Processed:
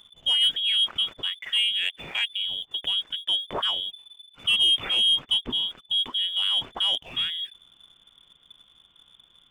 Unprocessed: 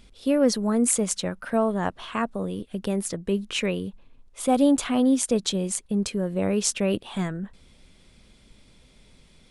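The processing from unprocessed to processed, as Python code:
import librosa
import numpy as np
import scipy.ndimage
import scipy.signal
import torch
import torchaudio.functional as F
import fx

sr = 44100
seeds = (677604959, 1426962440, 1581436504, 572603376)

y = fx.freq_invert(x, sr, carrier_hz=3500)
y = fx.leveller(y, sr, passes=1)
y = y * librosa.db_to_amplitude(-4.0)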